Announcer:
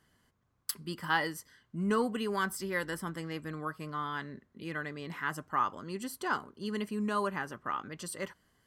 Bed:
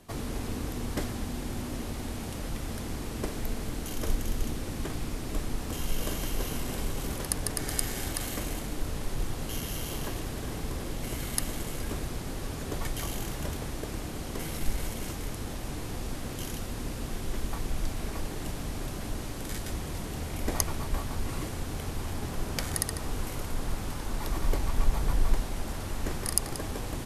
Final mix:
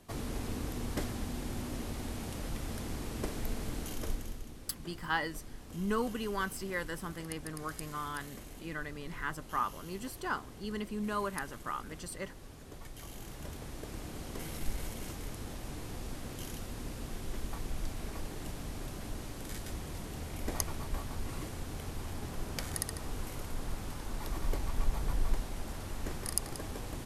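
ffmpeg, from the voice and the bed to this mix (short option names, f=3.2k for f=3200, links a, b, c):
-filter_complex "[0:a]adelay=4000,volume=-3dB[a];[1:a]volume=5.5dB,afade=t=out:st=3.81:d=0.63:silence=0.266073,afade=t=in:st=12.88:d=1.29:silence=0.354813[b];[a][b]amix=inputs=2:normalize=0"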